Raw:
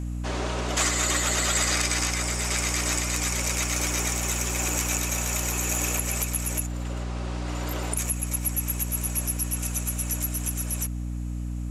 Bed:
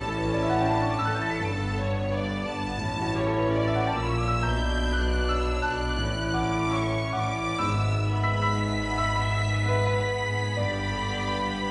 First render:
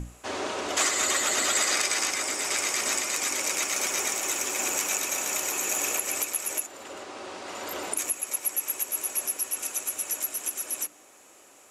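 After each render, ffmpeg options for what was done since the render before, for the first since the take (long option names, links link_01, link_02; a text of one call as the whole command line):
ffmpeg -i in.wav -af "bandreject=frequency=60:width_type=h:width=6,bandreject=frequency=120:width_type=h:width=6,bandreject=frequency=180:width_type=h:width=6,bandreject=frequency=240:width_type=h:width=6,bandreject=frequency=300:width_type=h:width=6" out.wav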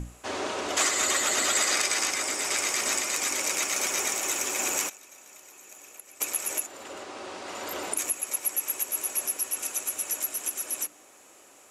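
ffmpeg -i in.wav -filter_complex "[0:a]asettb=1/sr,asplit=3[link_01][link_02][link_03];[link_01]atrim=end=2.634[link_04];[link_02]atrim=start=2.63:end=3.66,asetpts=PTS-STARTPTS,afade=type=in:duration=0.004:curve=qsin,afade=type=out:start_time=1.026:duration=0.004:curve=qsin,aeval=exprs='val(0)*gte(abs(val(0)),0.00376)':channel_layout=same[link_05];[link_03]atrim=start=3.656[link_06];[link_04][link_05]acrossfade=duration=0.004:curve1=hsin:curve2=qsin[link_07];[link_07][link_06]acrossfade=duration=0.004:curve1=qsin:curve2=hsin,asplit=3[link_08][link_09][link_10];[link_08]afade=type=out:start_time=4.88:duration=0.02[link_11];[link_09]agate=range=-21dB:threshold=-24dB:ratio=16:release=100:detection=peak,afade=type=in:start_time=4.88:duration=0.02,afade=type=out:start_time=6.2:duration=0.02[link_12];[link_10]afade=type=in:start_time=6.2:duration=0.02[link_13];[link_11][link_12][link_13]amix=inputs=3:normalize=0" out.wav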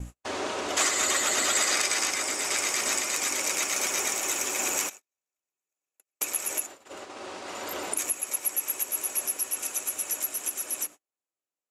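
ffmpeg -i in.wav -af "agate=range=-43dB:threshold=-40dB:ratio=16:detection=peak" out.wav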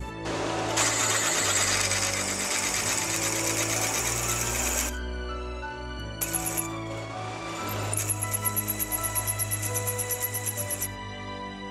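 ffmpeg -i in.wav -i bed.wav -filter_complex "[1:a]volume=-8.5dB[link_01];[0:a][link_01]amix=inputs=2:normalize=0" out.wav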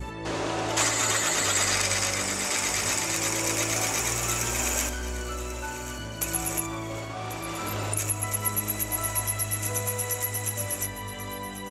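ffmpeg -i in.wav -af "aecho=1:1:1090|2180|3270|4360:0.2|0.0798|0.0319|0.0128" out.wav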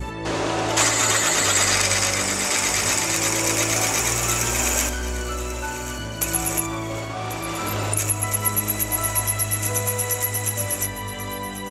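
ffmpeg -i in.wav -af "volume=5.5dB" out.wav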